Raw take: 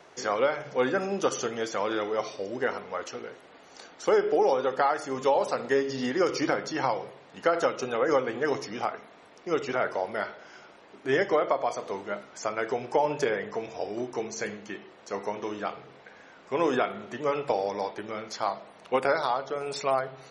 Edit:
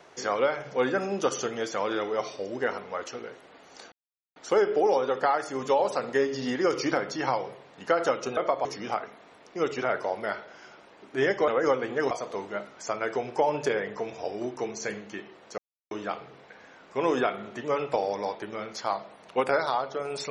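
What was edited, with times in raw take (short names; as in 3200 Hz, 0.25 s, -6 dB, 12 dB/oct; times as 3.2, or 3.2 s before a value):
3.92 insert silence 0.44 s
7.93–8.56 swap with 11.39–11.67
15.14–15.47 mute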